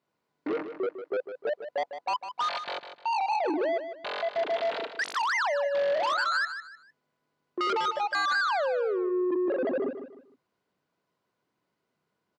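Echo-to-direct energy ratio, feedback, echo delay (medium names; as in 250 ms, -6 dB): -9.5 dB, 31%, 152 ms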